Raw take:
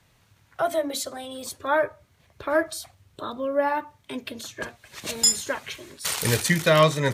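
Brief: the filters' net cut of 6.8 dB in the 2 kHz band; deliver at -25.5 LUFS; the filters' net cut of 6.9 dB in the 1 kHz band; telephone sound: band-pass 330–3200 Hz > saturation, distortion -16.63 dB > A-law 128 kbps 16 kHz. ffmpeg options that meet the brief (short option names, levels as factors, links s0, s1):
-af "highpass=330,lowpass=3200,equalizer=f=1000:t=o:g=-7,equalizer=f=2000:t=o:g=-5.5,asoftclip=threshold=0.126,volume=2.24" -ar 16000 -c:a pcm_alaw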